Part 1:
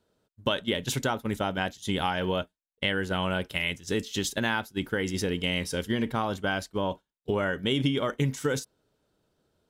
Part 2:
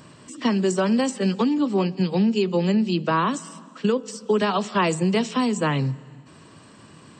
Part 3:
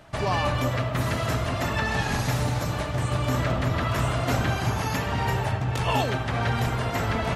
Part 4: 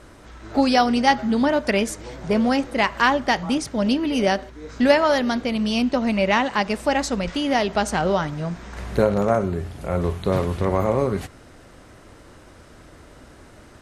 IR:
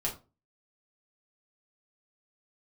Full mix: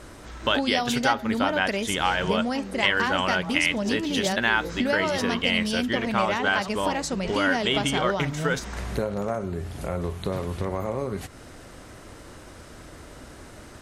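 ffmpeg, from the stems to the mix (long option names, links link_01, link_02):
-filter_complex "[0:a]equalizer=frequency=1700:width=0.38:gain=12,volume=-4.5dB[link_01];[1:a]adelay=2100,volume=-16dB[link_02];[2:a]alimiter=limit=-23.5dB:level=0:latency=1,asoftclip=type=tanh:threshold=-34.5dB,adelay=2000,volume=-17dB[link_03];[3:a]highshelf=frequency=4900:gain=5,acompressor=threshold=-31dB:ratio=2.5,volume=2dB[link_04];[link_01][link_02][link_03][link_04]amix=inputs=4:normalize=0"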